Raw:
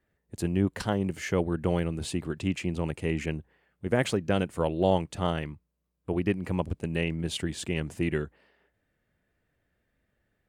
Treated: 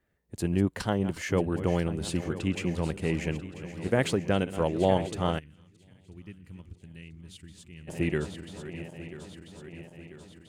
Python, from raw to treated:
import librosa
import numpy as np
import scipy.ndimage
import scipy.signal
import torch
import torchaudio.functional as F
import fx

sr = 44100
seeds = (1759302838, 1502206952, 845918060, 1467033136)

y = fx.reverse_delay_fb(x, sr, ms=495, feedback_pct=75, wet_db=-13)
y = fx.tone_stack(y, sr, knobs='6-0-2', at=(5.38, 7.87), fade=0.02)